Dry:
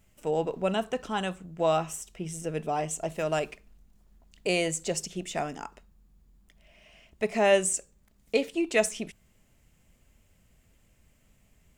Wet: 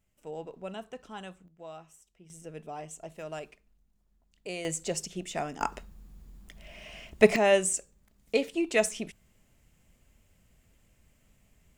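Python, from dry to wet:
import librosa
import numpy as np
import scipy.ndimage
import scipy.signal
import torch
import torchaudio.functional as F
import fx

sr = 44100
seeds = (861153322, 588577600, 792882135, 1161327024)

y = fx.gain(x, sr, db=fx.steps((0.0, -12.0), (1.48, -20.0), (2.3, -11.0), (4.65, -2.0), (5.61, 10.0), (7.36, -1.0)))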